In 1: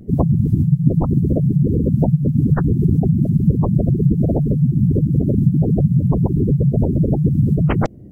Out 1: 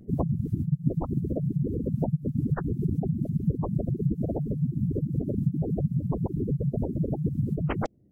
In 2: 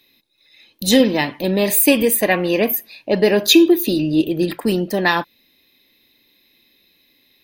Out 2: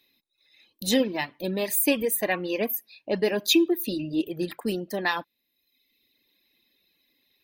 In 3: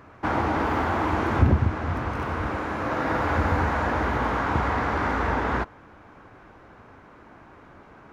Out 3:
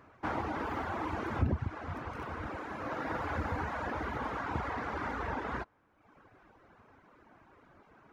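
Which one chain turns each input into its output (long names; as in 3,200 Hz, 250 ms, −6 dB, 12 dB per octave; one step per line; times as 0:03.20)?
reverb reduction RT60 0.96 s
low-shelf EQ 130 Hz −3.5 dB
level −8.5 dB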